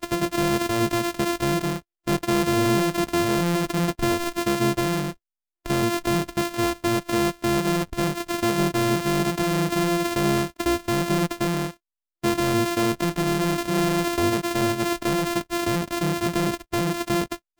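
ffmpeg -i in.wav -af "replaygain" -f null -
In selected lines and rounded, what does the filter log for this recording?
track_gain = +5.5 dB
track_peak = 0.113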